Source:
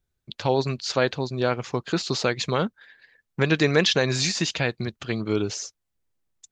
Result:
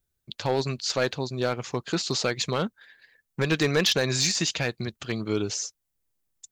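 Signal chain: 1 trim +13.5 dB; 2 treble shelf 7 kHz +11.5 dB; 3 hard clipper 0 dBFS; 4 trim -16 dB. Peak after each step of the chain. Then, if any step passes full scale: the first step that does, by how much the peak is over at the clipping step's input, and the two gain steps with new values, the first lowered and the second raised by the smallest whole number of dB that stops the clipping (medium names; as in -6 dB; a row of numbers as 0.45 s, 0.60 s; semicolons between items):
+7.0 dBFS, +8.0 dBFS, 0.0 dBFS, -16.0 dBFS; step 1, 8.0 dB; step 1 +5.5 dB, step 4 -8 dB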